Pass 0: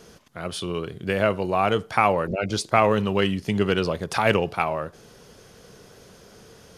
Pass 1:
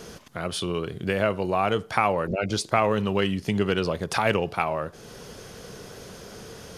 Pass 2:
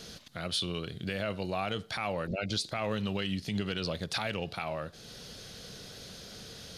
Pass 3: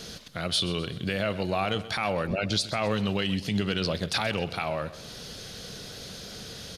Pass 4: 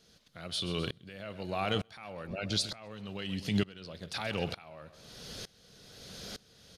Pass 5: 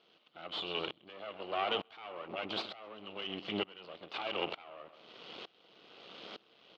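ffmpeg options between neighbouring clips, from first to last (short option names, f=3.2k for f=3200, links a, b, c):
-af "acompressor=threshold=-43dB:ratio=1.5,volume=7dB"
-af "equalizer=f=400:t=o:w=0.67:g=-6,equalizer=f=1k:t=o:w=0.67:g=-7,equalizer=f=4k:t=o:w=0.67:g=11,alimiter=limit=-16dB:level=0:latency=1:release=60,volume=-5dB"
-af "aecho=1:1:129|258|387|516:0.158|0.0792|0.0396|0.0198,volume=5.5dB"
-af "aeval=exprs='val(0)*pow(10,-24*if(lt(mod(-1.1*n/s,1),2*abs(-1.1)/1000),1-mod(-1.1*n/s,1)/(2*abs(-1.1)/1000),(mod(-1.1*n/s,1)-2*abs(-1.1)/1000)/(1-2*abs(-1.1)/1000))/20)':c=same"
-af "aeval=exprs='max(val(0),0)':c=same,highpass=330,equalizer=f=330:t=q:w=4:g=5,equalizer=f=750:t=q:w=4:g=3,equalizer=f=1.2k:t=q:w=4:g=4,equalizer=f=1.7k:t=q:w=4:g=-7,equalizer=f=2.9k:t=q:w=4:g=7,lowpass=f=3.4k:w=0.5412,lowpass=f=3.4k:w=1.3066,volume=3.5dB"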